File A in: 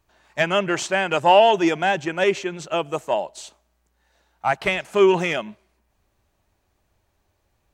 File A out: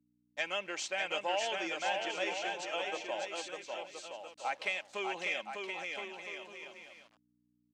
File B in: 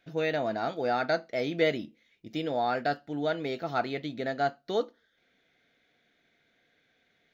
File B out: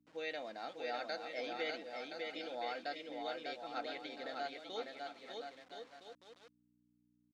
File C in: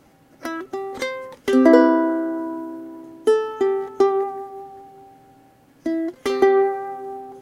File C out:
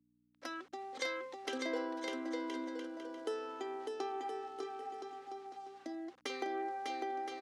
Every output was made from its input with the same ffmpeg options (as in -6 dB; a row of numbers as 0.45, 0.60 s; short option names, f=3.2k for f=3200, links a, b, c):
-af "anlmdn=0.158,equalizer=f=1.2k:w=0.52:g=-11.5,aecho=1:1:3.8:0.42,adynamicequalizer=threshold=0.00355:dfrequency=2300:dqfactor=4.8:tfrequency=2300:tqfactor=4.8:attack=5:release=100:ratio=0.375:range=2.5:mode=boostabove:tftype=bell,acompressor=threshold=-28dB:ratio=2.5,aecho=1:1:600|1020|1314|1520|1664:0.631|0.398|0.251|0.158|0.1,aeval=exprs='val(0)*gte(abs(val(0)),0.00251)':c=same,aeval=exprs='val(0)+0.00501*(sin(2*PI*60*n/s)+sin(2*PI*2*60*n/s)/2+sin(2*PI*3*60*n/s)/3+sin(2*PI*4*60*n/s)/4+sin(2*PI*5*60*n/s)/5)':c=same,highpass=640,lowpass=5.7k,volume=-3dB"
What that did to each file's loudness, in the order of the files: -16.0, -12.5, -21.0 LU